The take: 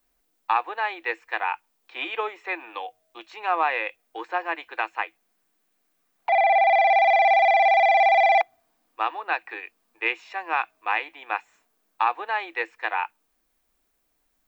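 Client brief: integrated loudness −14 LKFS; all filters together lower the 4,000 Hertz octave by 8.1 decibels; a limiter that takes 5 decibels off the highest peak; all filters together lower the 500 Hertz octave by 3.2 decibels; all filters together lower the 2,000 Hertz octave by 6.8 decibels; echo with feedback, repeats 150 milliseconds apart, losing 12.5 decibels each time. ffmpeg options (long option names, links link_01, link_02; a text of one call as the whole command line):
ffmpeg -i in.wav -af "equalizer=frequency=500:width_type=o:gain=-4.5,equalizer=frequency=2000:width_type=o:gain=-5.5,equalizer=frequency=4000:width_type=o:gain=-8.5,alimiter=limit=-17dB:level=0:latency=1,aecho=1:1:150|300|450:0.237|0.0569|0.0137,volume=14dB" out.wav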